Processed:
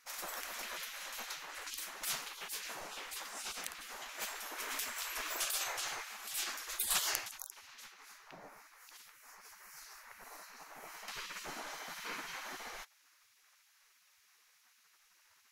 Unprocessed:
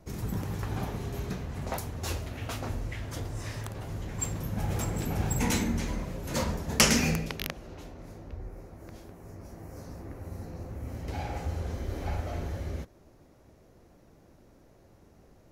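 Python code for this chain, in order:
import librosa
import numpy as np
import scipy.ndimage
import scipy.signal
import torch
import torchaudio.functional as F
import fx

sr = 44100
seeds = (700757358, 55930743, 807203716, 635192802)

y = fx.spec_gate(x, sr, threshold_db=-25, keep='weak')
y = fx.low_shelf(y, sr, hz=85.0, db=7.5)
y = F.gain(torch.from_numpy(y), 5.5).numpy()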